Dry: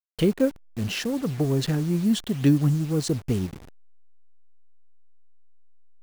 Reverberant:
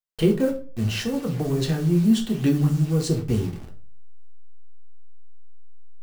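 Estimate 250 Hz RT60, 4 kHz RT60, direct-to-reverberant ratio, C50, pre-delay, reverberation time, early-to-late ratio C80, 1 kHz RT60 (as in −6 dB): 0.45 s, 0.30 s, 1.0 dB, 11.5 dB, 3 ms, 0.40 s, 16.5 dB, 0.40 s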